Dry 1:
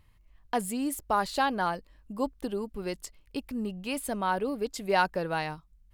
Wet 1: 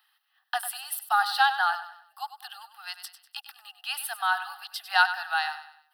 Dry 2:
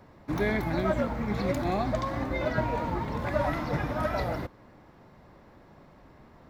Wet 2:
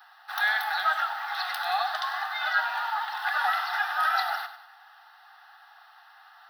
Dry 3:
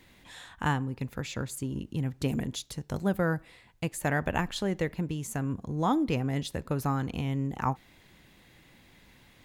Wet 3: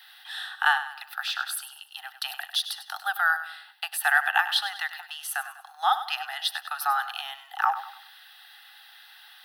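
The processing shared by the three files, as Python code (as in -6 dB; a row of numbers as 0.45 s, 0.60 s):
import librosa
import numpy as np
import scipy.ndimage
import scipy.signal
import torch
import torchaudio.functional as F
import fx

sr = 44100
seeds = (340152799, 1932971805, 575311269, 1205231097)

y = scipy.signal.sosfilt(scipy.signal.butter(16, 770.0, 'highpass', fs=sr, output='sos'), x)
y = fx.fixed_phaser(y, sr, hz=1500.0, stages=8)
y = fx.echo_feedback(y, sr, ms=98, feedback_pct=39, wet_db=-12)
y = y * 10.0 ** (-30 / 20.0) / np.sqrt(np.mean(np.square(y)))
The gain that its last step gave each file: +9.0 dB, +12.5 dB, +13.5 dB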